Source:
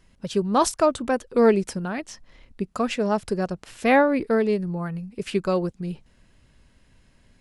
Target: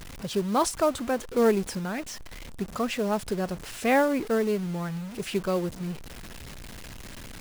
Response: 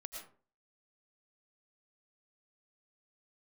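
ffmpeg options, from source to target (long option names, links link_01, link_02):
-af "aeval=exprs='val(0)+0.5*0.0282*sgn(val(0))':channel_layout=same,acrusher=bits=5:mode=log:mix=0:aa=0.000001,volume=-5dB"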